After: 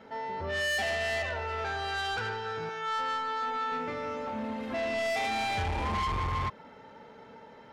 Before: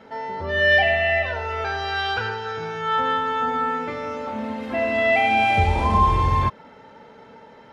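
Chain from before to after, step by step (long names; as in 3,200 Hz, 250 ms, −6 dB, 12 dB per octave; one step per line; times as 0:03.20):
0:02.69–0:03.72: high-pass filter 550 Hz 6 dB per octave
soft clipping −23.5 dBFS, distortion −7 dB
level −4.5 dB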